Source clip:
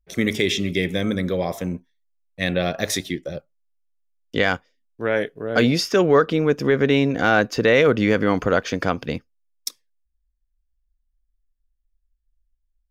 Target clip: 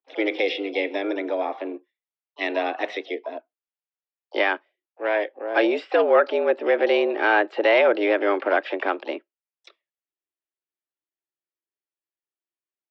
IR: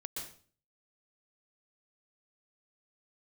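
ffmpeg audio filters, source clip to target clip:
-filter_complex "[0:a]highpass=frequency=210:width_type=q:width=0.5412,highpass=frequency=210:width_type=q:width=1.307,lowpass=frequency=3100:width_type=q:width=0.5176,lowpass=frequency=3100:width_type=q:width=0.7071,lowpass=frequency=3100:width_type=q:width=1.932,afreqshift=100,asplit=2[link_01][link_02];[link_02]asetrate=66075,aresample=44100,atempo=0.66742,volume=-15dB[link_03];[link_01][link_03]amix=inputs=2:normalize=0,volume=-1.5dB"

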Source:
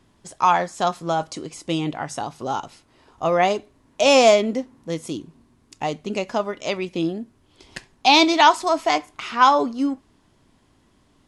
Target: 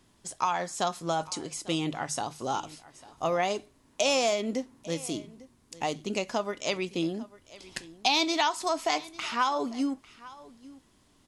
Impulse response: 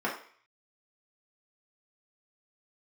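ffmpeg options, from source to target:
-filter_complex "[0:a]acompressor=threshold=-19dB:ratio=6,highshelf=frequency=3900:gain=9,bandreject=frequency=50:width_type=h:width=6,bandreject=frequency=100:width_type=h:width=6,bandreject=frequency=150:width_type=h:width=6,asplit=2[link_01][link_02];[link_02]aecho=0:1:848:0.1[link_03];[link_01][link_03]amix=inputs=2:normalize=0,volume=-5dB"

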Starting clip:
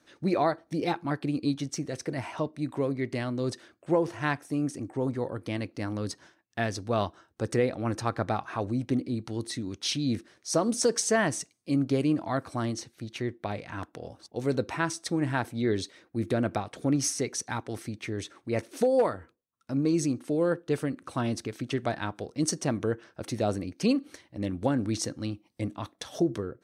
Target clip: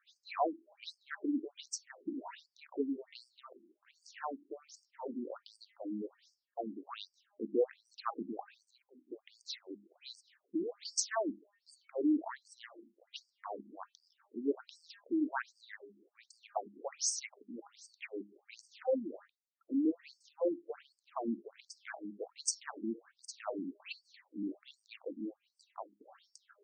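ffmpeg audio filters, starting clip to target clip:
ffmpeg -i in.wav -filter_complex "[0:a]asettb=1/sr,asplit=3[link_01][link_02][link_03];[link_01]atrim=end=8.434[link_04];[link_02]atrim=start=8.43:end=9.12,asetpts=PTS-STARTPTS,afade=type=in:duration=0.004:curve=qsin,afade=type=out:start_time=0.686:duration=0.004:curve=qsin,aderivative[link_05];[link_03]atrim=start=9.116[link_06];[link_04][link_05]acrossfade=duration=0.004:curve1=hsin:curve2=qsin[link_07];[link_07][link_06]acrossfade=duration=0.004:curve1=qsin:curve2=hsin,bandreject=frequency=203.6:width_type=h:width=4,bandreject=frequency=407.2:width_type=h:width=4,bandreject=frequency=610.8:width_type=h:width=4,bandreject=frequency=814.4:width_type=h:width=4,bandreject=frequency=1018:width_type=h:width=4,bandreject=frequency=1221.6:width_type=h:width=4,bandreject=frequency=1425.2:width_type=h:width=4,bandreject=frequency=1628.8:width_type=h:width=4,bandreject=frequency=1832.4:width_type=h:width=4,bandreject=frequency=2036:width_type=h:width=4,bandreject=frequency=2239.6:width_type=h:width=4,bandreject=frequency=2443.2:width_type=h:width=4,bandreject=frequency=2646.8:width_type=h:width=4,bandreject=frequency=2850.4:width_type=h:width=4,bandreject=frequency=3054:width_type=h:width=4,bandreject=frequency=3257.6:width_type=h:width=4,bandreject=frequency=3461.2:width_type=h:width=4,bandreject=frequency=3664.8:width_type=h:width=4,bandreject=frequency=3868.4:width_type=h:width=4,bandreject=frequency=4072:width_type=h:width=4,bandreject=frequency=4275.6:width_type=h:width=4,bandreject=frequency=4479.2:width_type=h:width=4,bandreject=frequency=4682.8:width_type=h:width=4,bandreject=frequency=4886.4:width_type=h:width=4,bandreject=frequency=5090:width_type=h:width=4,bandreject=frequency=5293.6:width_type=h:width=4,bandreject=frequency=5497.2:width_type=h:width=4,afftfilt=real='re*between(b*sr/1024,250*pow(6500/250,0.5+0.5*sin(2*PI*1.3*pts/sr))/1.41,250*pow(6500/250,0.5+0.5*sin(2*PI*1.3*pts/sr))*1.41)':imag='im*between(b*sr/1024,250*pow(6500/250,0.5+0.5*sin(2*PI*1.3*pts/sr))/1.41,250*pow(6500/250,0.5+0.5*sin(2*PI*1.3*pts/sr))*1.41)':win_size=1024:overlap=0.75,volume=-3dB" out.wav

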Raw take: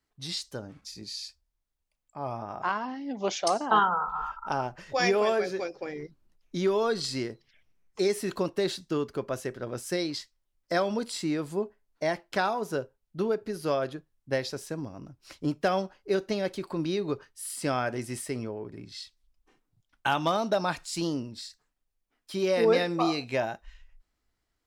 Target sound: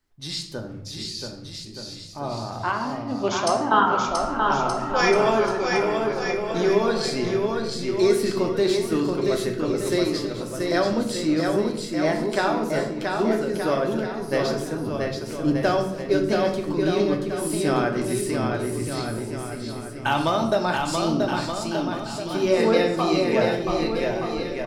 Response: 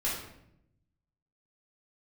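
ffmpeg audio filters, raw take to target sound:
-filter_complex "[0:a]equalizer=frequency=370:width=4.8:gain=3,aecho=1:1:680|1224|1659|2007|2286:0.631|0.398|0.251|0.158|0.1,asplit=2[link_01][link_02];[1:a]atrim=start_sample=2205,lowshelf=frequency=170:gain=9.5[link_03];[link_02][link_03]afir=irnorm=-1:irlink=0,volume=-7.5dB[link_04];[link_01][link_04]amix=inputs=2:normalize=0"

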